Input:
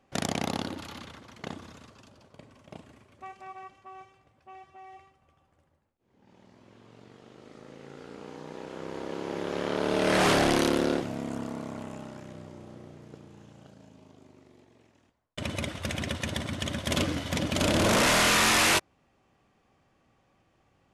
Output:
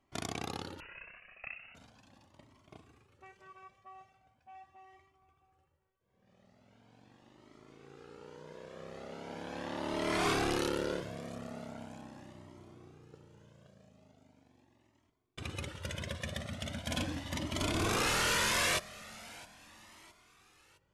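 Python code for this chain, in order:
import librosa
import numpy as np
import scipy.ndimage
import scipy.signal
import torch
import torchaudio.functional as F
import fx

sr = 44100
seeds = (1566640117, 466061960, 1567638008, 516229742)

p1 = x + fx.echo_feedback(x, sr, ms=663, feedback_pct=43, wet_db=-20.0, dry=0)
p2 = fx.freq_invert(p1, sr, carrier_hz=2800, at=(0.8, 1.75))
p3 = fx.comb_cascade(p2, sr, direction='rising', hz=0.4)
y = p3 * 10.0 ** (-3.5 / 20.0)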